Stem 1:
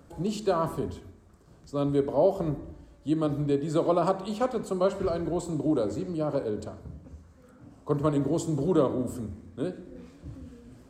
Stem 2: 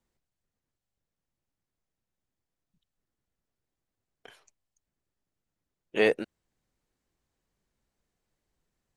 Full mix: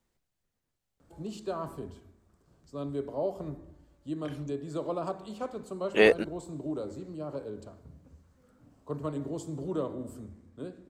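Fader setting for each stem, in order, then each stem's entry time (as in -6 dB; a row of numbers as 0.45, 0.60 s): -9.0, +3.0 dB; 1.00, 0.00 s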